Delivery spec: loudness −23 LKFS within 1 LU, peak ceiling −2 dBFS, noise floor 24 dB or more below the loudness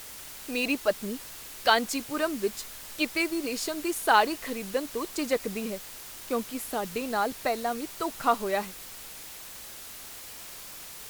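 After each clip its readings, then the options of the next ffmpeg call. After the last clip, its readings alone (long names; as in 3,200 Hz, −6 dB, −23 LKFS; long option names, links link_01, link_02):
background noise floor −44 dBFS; target noise floor −53 dBFS; integrated loudness −29.0 LKFS; sample peak −6.5 dBFS; target loudness −23.0 LKFS
→ -af "afftdn=noise_reduction=9:noise_floor=-44"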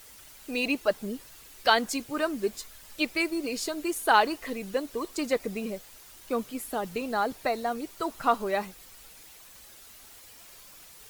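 background noise floor −51 dBFS; target noise floor −53 dBFS
→ -af "afftdn=noise_reduction=6:noise_floor=-51"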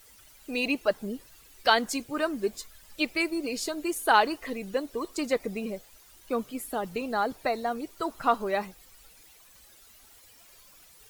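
background noise floor −56 dBFS; integrated loudness −29.0 LKFS; sample peak −6.0 dBFS; target loudness −23.0 LKFS
→ -af "volume=6dB,alimiter=limit=-2dB:level=0:latency=1"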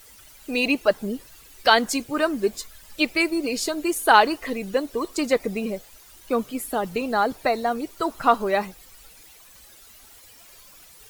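integrated loudness −23.0 LKFS; sample peak −2.0 dBFS; background noise floor −50 dBFS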